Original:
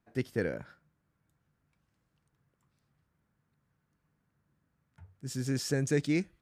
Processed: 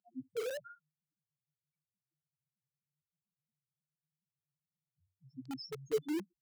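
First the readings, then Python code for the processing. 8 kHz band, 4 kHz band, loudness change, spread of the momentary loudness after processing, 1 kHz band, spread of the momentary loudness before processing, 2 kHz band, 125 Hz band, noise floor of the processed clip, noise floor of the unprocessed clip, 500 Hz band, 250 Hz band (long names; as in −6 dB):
−14.0 dB, −6.5 dB, −7.5 dB, 18 LU, −1.0 dB, 12 LU, −12.0 dB, −21.5 dB, below −85 dBFS, −79 dBFS, −4.0 dB, −9.0 dB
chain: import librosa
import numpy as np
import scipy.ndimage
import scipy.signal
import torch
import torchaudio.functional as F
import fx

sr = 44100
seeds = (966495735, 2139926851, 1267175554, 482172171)

p1 = fx.spec_topn(x, sr, count=1)
p2 = fx.filter_lfo_lowpass(p1, sr, shape='saw_down', hz=1.1, low_hz=740.0, high_hz=4600.0, q=5.5)
p3 = scipy.signal.sosfilt(scipy.signal.cheby1(2, 1.0, [540.0, 6700.0], 'bandpass', fs=sr, output='sos'), p2)
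p4 = (np.mod(10.0 ** (46.0 / 20.0) * p3 + 1.0, 2.0) - 1.0) / 10.0 ** (46.0 / 20.0)
p5 = p3 + (p4 * librosa.db_to_amplitude(-4.5))
y = p5 * librosa.db_to_amplitude(7.5)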